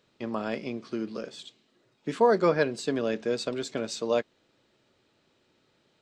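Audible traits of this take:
background noise floor −70 dBFS
spectral slope −4.0 dB per octave

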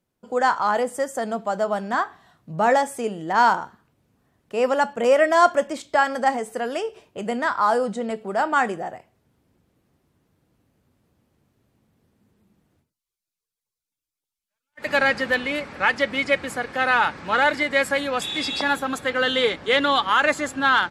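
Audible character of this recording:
background noise floor −88 dBFS
spectral slope −1.0 dB per octave

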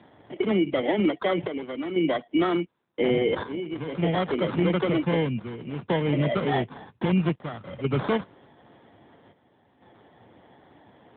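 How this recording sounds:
chopped level 0.51 Hz, depth 65%, duty 75%
aliases and images of a low sample rate 2,600 Hz, jitter 0%
AMR narrowband

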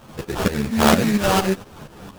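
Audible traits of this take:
a quantiser's noise floor 8 bits, dither triangular
tremolo saw up 4.3 Hz, depth 75%
aliases and images of a low sample rate 2,100 Hz, jitter 20%
a shimmering, thickened sound

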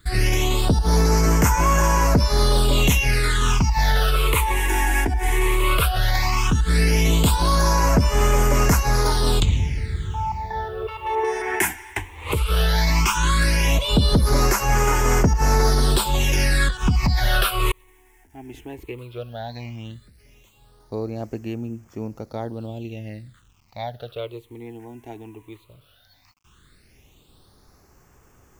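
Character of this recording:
a quantiser's noise floor 10 bits, dither none
phaser sweep stages 8, 0.15 Hz, lowest notch 160–3,800 Hz

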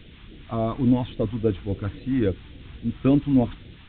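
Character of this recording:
tremolo saw up 0.53 Hz, depth 30%
a quantiser's noise floor 8 bits, dither triangular
phaser sweep stages 2, 3.6 Hz, lowest notch 490–1,000 Hz
mu-law

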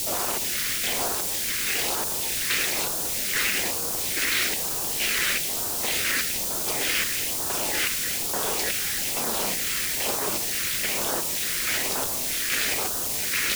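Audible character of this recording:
chopped level 1.2 Hz, depth 60%, duty 45%
a quantiser's noise floor 6 bits, dither triangular
phaser sweep stages 2, 1.1 Hz, lowest notch 780–2,000 Hz

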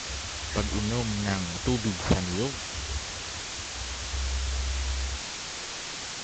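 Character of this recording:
aliases and images of a low sample rate 3,500 Hz
tremolo saw up 8.9 Hz, depth 35%
a quantiser's noise floor 6 bits, dither triangular
Ogg Vorbis

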